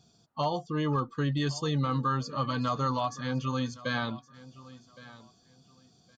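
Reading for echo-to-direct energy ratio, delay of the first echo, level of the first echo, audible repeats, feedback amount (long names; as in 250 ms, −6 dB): −19.0 dB, 1,115 ms, −19.0 dB, 2, 22%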